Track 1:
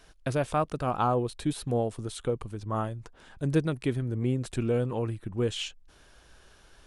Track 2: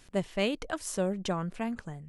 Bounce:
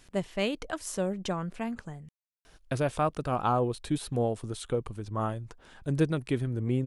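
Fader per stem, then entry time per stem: -0.5, -0.5 dB; 2.45, 0.00 s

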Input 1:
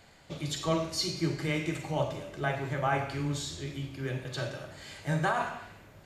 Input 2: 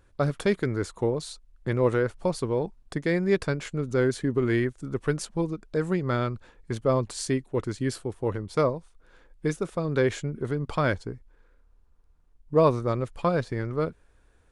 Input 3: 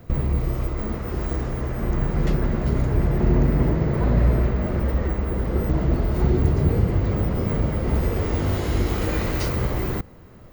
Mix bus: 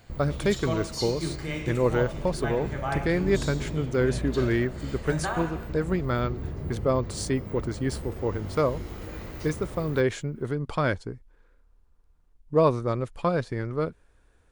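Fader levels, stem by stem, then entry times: -2.0, -0.5, -14.5 dB; 0.00, 0.00, 0.00 s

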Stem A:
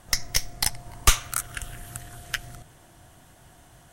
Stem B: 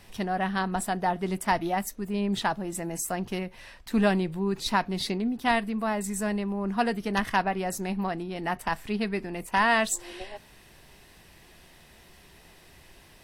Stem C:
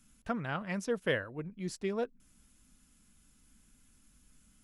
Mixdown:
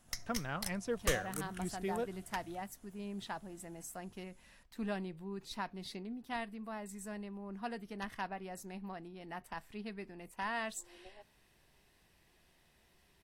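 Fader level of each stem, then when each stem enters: -17.0, -15.5, -4.0 dB; 0.00, 0.85, 0.00 s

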